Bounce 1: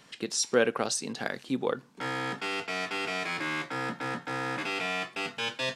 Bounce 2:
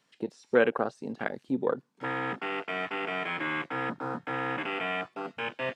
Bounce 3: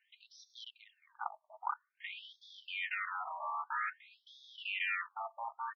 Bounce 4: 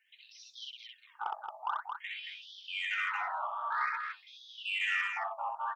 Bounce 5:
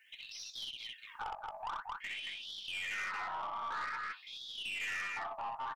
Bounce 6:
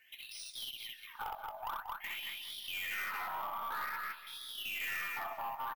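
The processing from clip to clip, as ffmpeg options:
-filter_complex "[0:a]acrossover=split=2900[a][b];[b]acompressor=threshold=-45dB:ratio=4:attack=1:release=60[c];[a][c]amix=inputs=2:normalize=0,afwtdn=0.02,lowshelf=f=110:g=-7,volume=2dB"
-af "aecho=1:1:3.3:0.41,aeval=exprs='0.376*(cos(1*acos(clip(val(0)/0.376,-1,1)))-cos(1*PI/2))+0.0119*(cos(6*acos(clip(val(0)/0.376,-1,1)))-cos(6*PI/2))':c=same,afftfilt=real='re*between(b*sr/1024,840*pow(4700/840,0.5+0.5*sin(2*PI*0.51*pts/sr))/1.41,840*pow(4700/840,0.5+0.5*sin(2*PI*0.51*pts/sr))*1.41)':imag='im*between(b*sr/1024,840*pow(4700/840,0.5+0.5*sin(2*PI*0.51*pts/sr))/1.41,840*pow(4700/840,0.5+0.5*sin(2*PI*0.51*pts/sr))*1.41)':win_size=1024:overlap=0.75"
-af "flanger=delay=2.2:depth=9.9:regen=65:speed=1.6:shape=sinusoidal,asoftclip=type=tanh:threshold=-30.5dB,aecho=1:1:64.14|224.5:0.794|0.562,volume=7dB"
-filter_complex "[0:a]acompressor=threshold=-52dB:ratio=2,asplit=2[a][b];[b]adelay=20,volume=-12dB[c];[a][c]amix=inputs=2:normalize=0,aeval=exprs='(tanh(141*val(0)+0.2)-tanh(0.2))/141':c=same,volume=9dB"
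-af "acrusher=samples=3:mix=1:aa=0.000001,aecho=1:1:186|372|558|744:0.178|0.0836|0.0393|0.0185"

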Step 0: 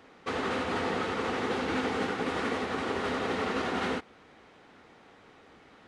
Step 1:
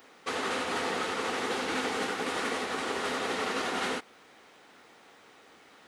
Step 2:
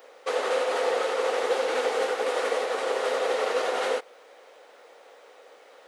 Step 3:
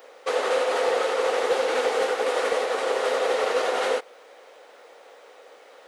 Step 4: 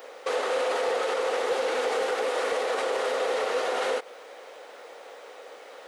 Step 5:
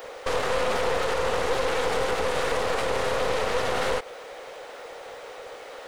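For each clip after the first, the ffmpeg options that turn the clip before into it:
-af "aemphasis=mode=production:type=bsi"
-af "highpass=f=520:t=q:w=4.9"
-af "asoftclip=type=hard:threshold=-17dB,volume=2.5dB"
-af "alimiter=limit=-23dB:level=0:latency=1:release=96,volume=4dB"
-af "aeval=exprs='clip(val(0),-1,0.00841)':c=same,volume=5dB"

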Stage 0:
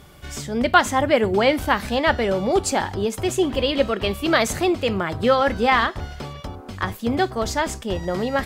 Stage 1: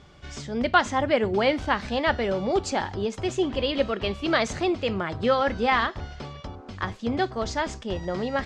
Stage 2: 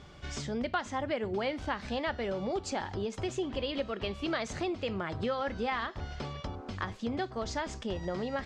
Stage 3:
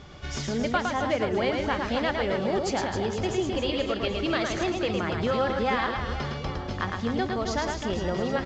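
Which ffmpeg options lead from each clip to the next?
-af "lowpass=f=6.5k:w=0.5412,lowpass=f=6.5k:w=1.3066,volume=-4.5dB"
-af "acompressor=threshold=-33dB:ratio=3"
-filter_complex "[0:a]asplit=2[a][b];[b]aecho=0:1:110|264|479.6|781.4|1204:0.631|0.398|0.251|0.158|0.1[c];[a][c]amix=inputs=2:normalize=0,volume=5dB" -ar 16000 -c:a pcm_mulaw

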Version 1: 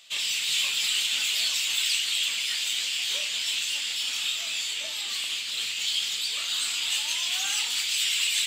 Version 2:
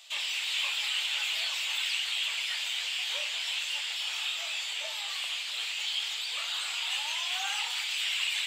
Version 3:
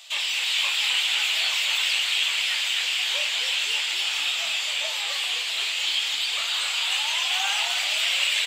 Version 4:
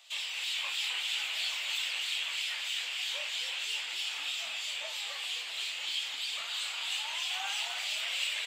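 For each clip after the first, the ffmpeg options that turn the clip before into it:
-filter_complex "[0:a]acrossover=split=3100[a][b];[b]acompressor=threshold=-39dB:ratio=4:attack=1:release=60[c];[a][c]amix=inputs=2:normalize=0,highpass=f=520:w=0.5412,highpass=f=520:w=1.3066,equalizer=f=830:t=o:w=0.61:g=6"
-filter_complex "[0:a]asplit=9[a][b][c][d][e][f][g][h][i];[b]adelay=259,afreqshift=-72,volume=-7dB[j];[c]adelay=518,afreqshift=-144,volume=-11.4dB[k];[d]adelay=777,afreqshift=-216,volume=-15.9dB[l];[e]adelay=1036,afreqshift=-288,volume=-20.3dB[m];[f]adelay=1295,afreqshift=-360,volume=-24.7dB[n];[g]adelay=1554,afreqshift=-432,volume=-29.2dB[o];[h]adelay=1813,afreqshift=-504,volume=-33.6dB[p];[i]adelay=2072,afreqshift=-576,volume=-38.1dB[q];[a][j][k][l][m][n][o][p][q]amix=inputs=9:normalize=0,volume=6.5dB"
-filter_complex "[0:a]acrossover=split=2300[a][b];[a]aeval=exprs='val(0)*(1-0.5/2+0.5/2*cos(2*PI*3.1*n/s))':c=same[c];[b]aeval=exprs='val(0)*(1-0.5/2-0.5/2*cos(2*PI*3.1*n/s))':c=same[d];[c][d]amix=inputs=2:normalize=0,volume=-8dB"

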